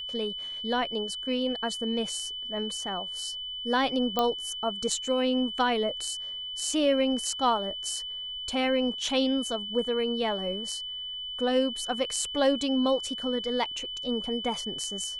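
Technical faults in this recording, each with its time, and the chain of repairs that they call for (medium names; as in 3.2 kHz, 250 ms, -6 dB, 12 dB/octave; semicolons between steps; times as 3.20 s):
whine 3 kHz -34 dBFS
4.19 s: pop -12 dBFS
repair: de-click; band-stop 3 kHz, Q 30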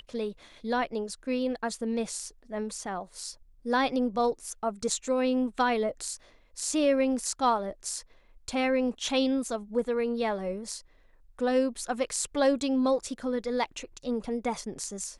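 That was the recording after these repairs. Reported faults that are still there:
nothing left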